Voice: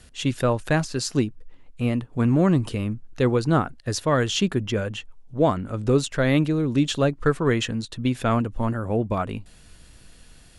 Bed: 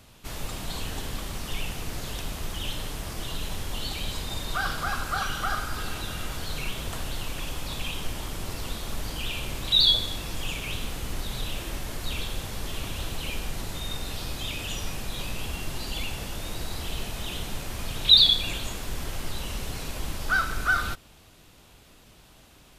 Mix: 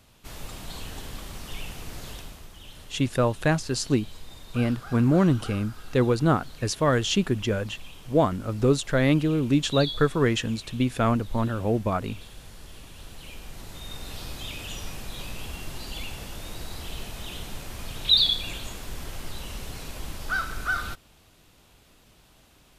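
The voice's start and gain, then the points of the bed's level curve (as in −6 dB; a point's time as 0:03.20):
2.75 s, −1.0 dB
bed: 0:02.11 −4.5 dB
0:02.50 −13.5 dB
0:12.90 −13.5 dB
0:14.17 −3.5 dB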